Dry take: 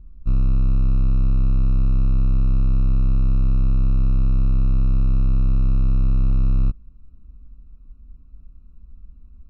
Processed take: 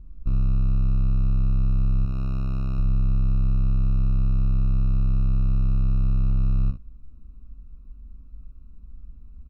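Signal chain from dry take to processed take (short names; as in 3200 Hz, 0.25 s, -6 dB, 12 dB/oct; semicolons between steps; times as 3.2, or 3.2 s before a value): 2.05–2.79 low shelf 190 Hz -10 dB; compressor, threshold -20 dBFS, peak gain reduction 4.5 dB; early reflections 42 ms -9 dB, 60 ms -10 dB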